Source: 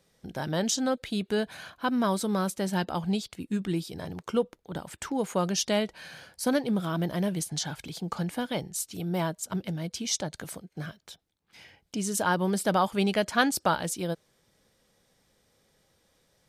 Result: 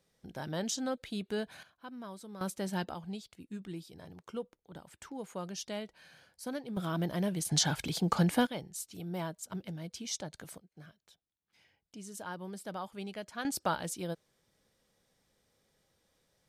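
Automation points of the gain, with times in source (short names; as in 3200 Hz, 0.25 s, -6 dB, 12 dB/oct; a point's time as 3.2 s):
-7.5 dB
from 1.63 s -19 dB
from 2.41 s -6.5 dB
from 2.94 s -13 dB
from 6.77 s -4 dB
from 7.45 s +4 dB
from 8.47 s -8.5 dB
from 10.58 s -16 dB
from 13.45 s -6.5 dB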